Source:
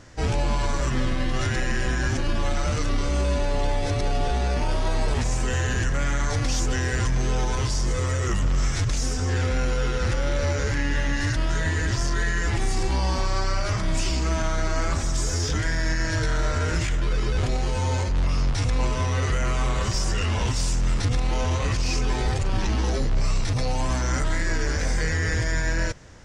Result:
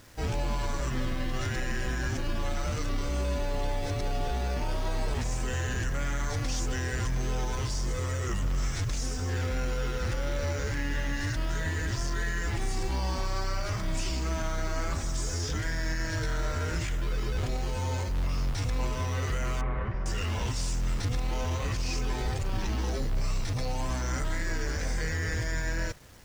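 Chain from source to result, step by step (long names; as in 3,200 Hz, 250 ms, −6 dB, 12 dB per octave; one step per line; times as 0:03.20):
bit reduction 8 bits
0:19.61–0:20.06: Chebyshev low-pass filter 2,000 Hz, order 3
level −6.5 dB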